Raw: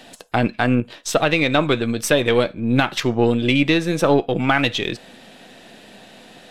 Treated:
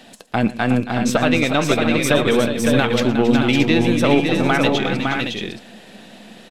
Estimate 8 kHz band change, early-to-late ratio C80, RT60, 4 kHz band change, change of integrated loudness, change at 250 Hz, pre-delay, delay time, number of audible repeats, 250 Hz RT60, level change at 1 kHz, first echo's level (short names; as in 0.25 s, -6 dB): +1.0 dB, none, none, +1.0 dB, +1.5 dB, +3.0 dB, none, 0.116 s, 5, none, +1.0 dB, -18.0 dB